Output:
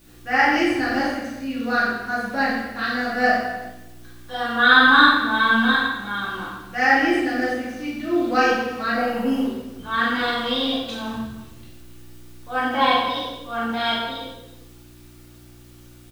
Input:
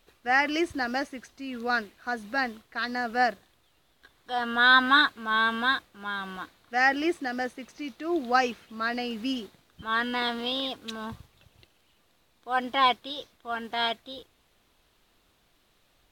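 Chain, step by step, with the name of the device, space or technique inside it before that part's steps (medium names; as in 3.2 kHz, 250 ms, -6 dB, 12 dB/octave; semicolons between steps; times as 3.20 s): 8.95–9.43 s: FFT filter 310 Hz 0 dB, 960 Hz +13 dB, 4.1 kHz -15 dB, 11 kHz +6 dB; reverse bouncing-ball echo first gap 40 ms, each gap 1.3×, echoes 5; video cassette with head-switching buzz (mains buzz 60 Hz, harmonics 6, -54 dBFS -2 dB/octave; white noise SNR 31 dB); simulated room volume 240 m³, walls mixed, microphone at 2.4 m; trim -3.5 dB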